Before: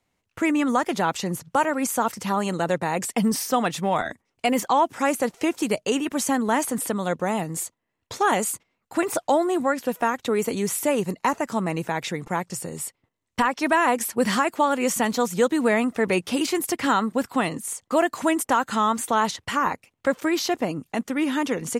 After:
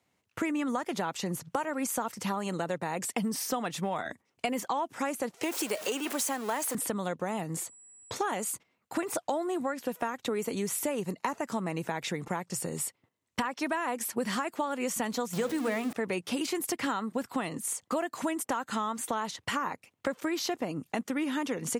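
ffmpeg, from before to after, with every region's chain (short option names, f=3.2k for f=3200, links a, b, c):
-filter_complex "[0:a]asettb=1/sr,asplit=3[a][b][c];[a]atrim=end=5.434[d];[b]atrim=start=5.43:end=6.75,asetpts=PTS-STARTPTS,afade=t=in:d=0.004:c=qsin,afade=t=out:st=1.316:d=0.004:c=qsin,aeval=exprs='val(0)+0.5*0.0398*sgn(val(0))':c=same,highpass=390,highshelf=f=11k:g=6[e];[c]atrim=start=6.746[f];[d][e]acrossfade=d=0.004:c1=hsin:c2=qsin[g];[g][f]acrossfade=d=0.004:c1=qsin:c2=hsin,asettb=1/sr,asplit=3[h][i][j];[h]atrim=end=7.564[k];[i]atrim=start=7.56:end=8.16,asetpts=PTS-STARTPTS,afade=t=in:d=0.004:c=qsin,afade=t=out:st=0.596:d=0.004:c=qsin,highshelf=f=3.6k:g=-7,aeval=exprs='val(0)+0.00251*sin(2*PI*7800*n/s)':c=same[l];[j]atrim=start=8.156[m];[k][l]acrossfade=d=0.004:c1=hsin:c2=qsin[n];[n][m]acrossfade=d=0.004:c1=qsin:c2=hsin,asettb=1/sr,asplit=3[o][p][q];[o]atrim=end=15.334[r];[p]atrim=start=15.33:end=15.93,asetpts=PTS-STARTPTS,afade=t=in:d=0.004:c=qsin,afade=t=out:st=0.596:d=0.004:c=qsin,aeval=exprs='val(0)+0.5*0.0631*sgn(val(0))':c=same,bandreject=f=60:t=h:w=6,bandreject=f=120:t=h:w=6,bandreject=f=180:t=h:w=6,bandreject=f=240:t=h:w=6,bandreject=f=300:t=h:w=6,bandreject=f=360:t=h:w=6,bandreject=f=420:t=h:w=6,bandreject=f=480:t=h:w=6,bandreject=f=540:t=h:w=6[s];[q]atrim=start=15.926[t];[r][s]acrossfade=d=0.004:c1=hsin:c2=qsin[u];[u][t]acrossfade=d=0.004:c1=qsin:c2=hsin,highpass=94,acompressor=threshold=-29dB:ratio=5"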